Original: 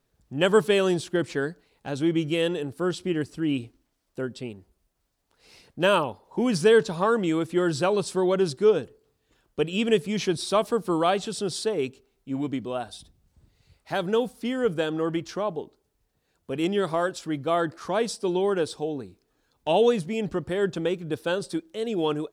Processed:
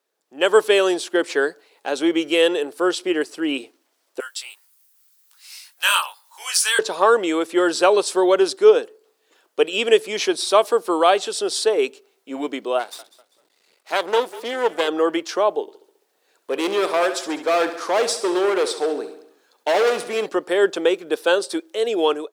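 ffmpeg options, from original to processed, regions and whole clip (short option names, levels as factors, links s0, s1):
-filter_complex "[0:a]asettb=1/sr,asplit=3[s0][s1][s2];[s0]atrim=end=4.204[s3];[s1]atrim=start=4.2:end=6.79,asetpts=PTS-STARTPTS,afade=t=in:d=0.004:c=qsin,afade=t=out:st=2.586:d=0.004:c=qsin,highpass=f=1100:w=0.5412,highpass=f=1100:w=1.3066,aemphasis=mode=production:type=75fm,flanger=delay=19:depth=2.7:speed=1.9[s4];[s2]atrim=start=6.786[s5];[s3][s4]acrossfade=d=0.004:c1=hsin:c2=qsin[s6];[s6][s5]acrossfade=d=0.004:c1=qsin:c2=hsin,asettb=1/sr,asplit=3[s7][s8][s9];[s7]atrim=end=12.794[s10];[s8]atrim=start=12.79:end=14.88,asetpts=PTS-STARTPTS,afade=t=in:d=0.004:c=qsin,afade=t=out:st=2.086:d=0.004:c=qsin,aeval=exprs='max(val(0),0)':c=same,asplit=4[s11][s12][s13][s14];[s12]adelay=196,afreqshift=-49,volume=0.133[s15];[s13]adelay=392,afreqshift=-98,volume=0.0452[s16];[s14]adelay=588,afreqshift=-147,volume=0.0155[s17];[s11][s15][s16][s17]amix=inputs=4:normalize=0,atrim=end_sample=92169[s18];[s9]atrim=start=14.876[s19];[s10][s18]acrossfade=d=0.004:c1=hsin:c2=qsin[s20];[s20][s19]acrossfade=d=0.004:c1=qsin:c2=hsin,asettb=1/sr,asplit=3[s21][s22][s23];[s21]atrim=end=15.614[s24];[s22]atrim=start=15.61:end=20.26,asetpts=PTS-STARTPTS,afade=t=in:d=0.004:c=qsin,afade=t=out:st=4.646:d=0.004:c=qsin,volume=17.8,asoftclip=hard,volume=0.0562,aecho=1:1:68|136|204|272|340|408:0.266|0.149|0.0834|0.0467|0.0262|0.0147,atrim=end_sample=205065[s25];[s23]atrim=start=20.256[s26];[s24][s25]acrossfade=d=0.004:c1=hsin:c2=qsin[s27];[s27][s26]acrossfade=d=0.004:c1=qsin:c2=hsin,highpass=f=370:w=0.5412,highpass=f=370:w=1.3066,dynaudnorm=f=170:g=5:m=3.16"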